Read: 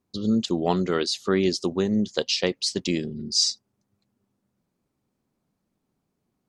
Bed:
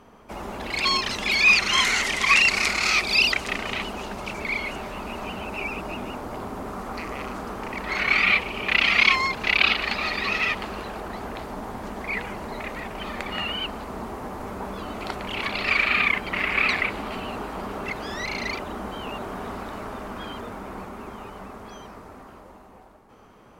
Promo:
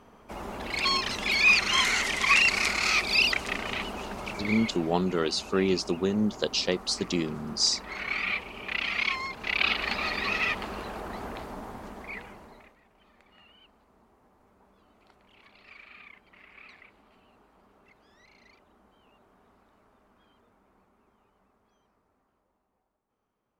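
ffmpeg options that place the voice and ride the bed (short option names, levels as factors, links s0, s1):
-filter_complex "[0:a]adelay=4250,volume=0.708[s0];[1:a]volume=1.5,afade=t=out:st=4.31:d=0.67:silence=0.446684,afade=t=in:st=9.36:d=0.52:silence=0.446684,afade=t=out:st=11.24:d=1.52:silence=0.0530884[s1];[s0][s1]amix=inputs=2:normalize=0"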